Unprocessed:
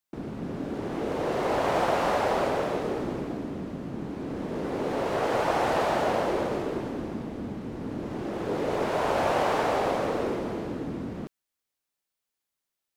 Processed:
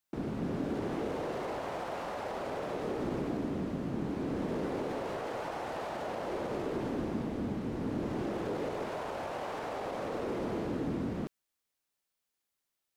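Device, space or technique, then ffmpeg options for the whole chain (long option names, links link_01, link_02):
de-esser from a sidechain: -filter_complex "[0:a]asplit=2[link_01][link_02];[link_02]highpass=frequency=4300:poles=1,apad=whole_len=571946[link_03];[link_01][link_03]sidechaincompress=threshold=-46dB:ratio=10:attack=0.74:release=78"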